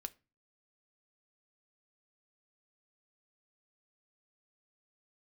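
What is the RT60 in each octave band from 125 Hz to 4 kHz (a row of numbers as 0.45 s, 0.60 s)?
0.55 s, 0.45 s, 0.30 s, 0.30 s, 0.30 s, 0.25 s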